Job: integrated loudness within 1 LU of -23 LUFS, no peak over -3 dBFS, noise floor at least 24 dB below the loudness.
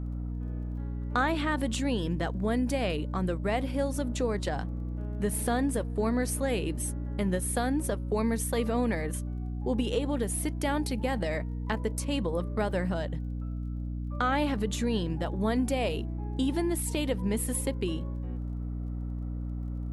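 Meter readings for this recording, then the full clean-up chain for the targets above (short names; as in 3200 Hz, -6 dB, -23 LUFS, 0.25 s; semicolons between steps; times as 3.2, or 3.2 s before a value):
ticks 20/s; hum 60 Hz; harmonics up to 300 Hz; hum level -31 dBFS; loudness -31.0 LUFS; peak -13.5 dBFS; loudness target -23.0 LUFS
-> de-click; de-hum 60 Hz, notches 5; gain +8 dB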